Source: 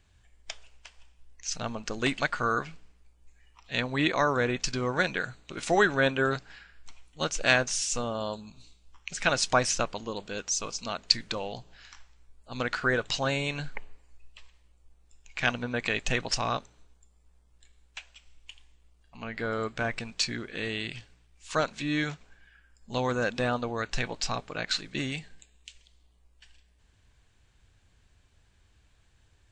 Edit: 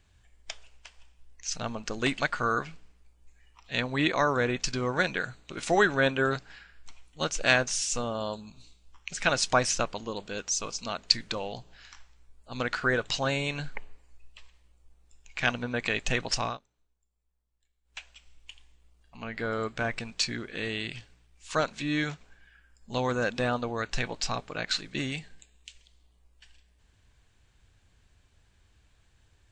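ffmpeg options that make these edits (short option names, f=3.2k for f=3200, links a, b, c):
-filter_complex "[0:a]asplit=3[a][b][c];[a]atrim=end=16.58,asetpts=PTS-STARTPTS,afade=t=out:st=16.44:d=0.14:silence=0.125893[d];[b]atrim=start=16.58:end=17.84,asetpts=PTS-STARTPTS,volume=-18dB[e];[c]atrim=start=17.84,asetpts=PTS-STARTPTS,afade=t=in:d=0.14:silence=0.125893[f];[d][e][f]concat=n=3:v=0:a=1"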